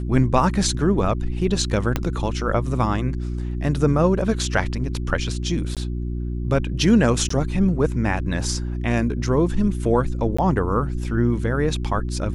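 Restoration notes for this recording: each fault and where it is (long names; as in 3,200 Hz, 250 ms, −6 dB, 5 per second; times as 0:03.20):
mains hum 60 Hz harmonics 6 −26 dBFS
0:01.96: click −7 dBFS
0:05.75–0:05.77: drop-out 17 ms
0:07.29–0:07.30: drop-out 14 ms
0:10.37–0:10.38: drop-out 15 ms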